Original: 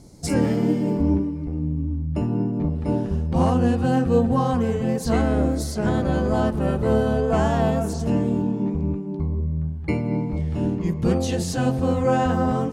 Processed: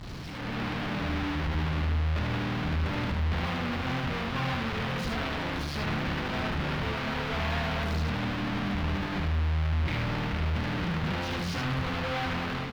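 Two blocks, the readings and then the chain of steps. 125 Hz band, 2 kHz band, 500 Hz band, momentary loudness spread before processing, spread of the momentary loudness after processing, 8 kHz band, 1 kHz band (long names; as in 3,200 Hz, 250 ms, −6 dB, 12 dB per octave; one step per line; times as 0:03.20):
−6.5 dB, +3.5 dB, −13.5 dB, 6 LU, 3 LU, −12.0 dB, −6.0 dB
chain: sign of each sample alone
brickwall limiter −27.5 dBFS, peak gain reduction 25 dB
guitar amp tone stack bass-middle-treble 5-5-5
single-tap delay 75 ms −4 dB
automatic gain control gain up to 9.5 dB
high-frequency loss of the air 330 metres
level +3.5 dB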